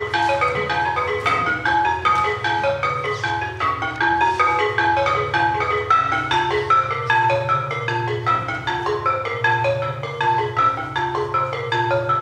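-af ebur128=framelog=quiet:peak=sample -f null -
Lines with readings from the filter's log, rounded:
Integrated loudness:
  I:         -19.5 LUFS
  Threshold: -29.5 LUFS
Loudness range:
  LRA:         2.6 LU
  Threshold: -39.4 LUFS
  LRA low:   -20.7 LUFS
  LRA high:  -18.0 LUFS
Sample peak:
  Peak:       -4.6 dBFS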